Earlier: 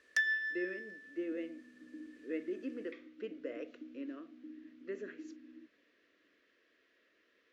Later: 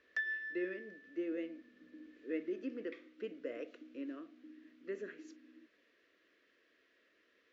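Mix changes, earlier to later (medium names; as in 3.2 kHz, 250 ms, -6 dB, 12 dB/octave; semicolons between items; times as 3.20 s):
first sound: add tape spacing loss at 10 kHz 33 dB; second sound: add bass shelf 360 Hz -9.5 dB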